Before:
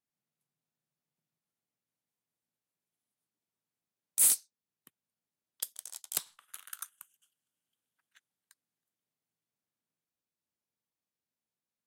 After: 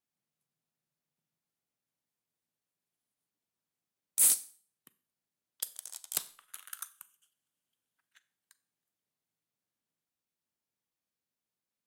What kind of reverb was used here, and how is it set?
Schroeder reverb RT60 0.44 s, combs from 30 ms, DRR 15.5 dB

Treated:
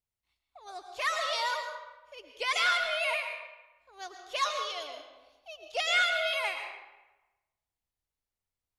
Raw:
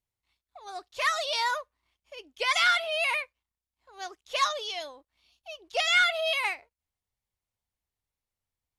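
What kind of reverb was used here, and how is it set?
algorithmic reverb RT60 1.1 s, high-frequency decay 0.7×, pre-delay 75 ms, DRR 5 dB; trim -4 dB

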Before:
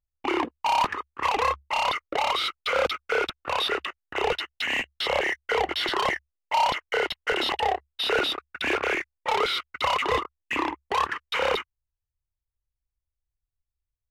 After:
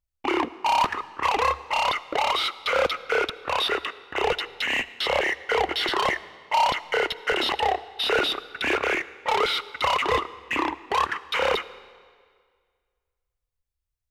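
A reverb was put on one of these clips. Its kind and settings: algorithmic reverb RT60 1.9 s, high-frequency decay 0.9×, pre-delay 30 ms, DRR 17 dB; trim +1.5 dB

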